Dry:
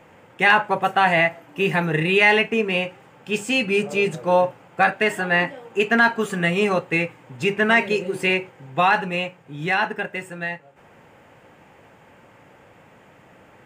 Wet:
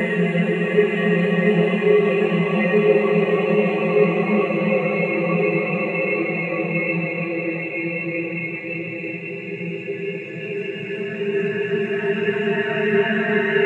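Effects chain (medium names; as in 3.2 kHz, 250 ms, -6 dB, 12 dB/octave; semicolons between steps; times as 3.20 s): Paulstretch 12×, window 1.00 s, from 6.42 s; echo whose repeats swap between lows and highs 678 ms, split 840 Hz, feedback 79%, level -12 dB; spectral contrast expander 1.5:1; trim +3 dB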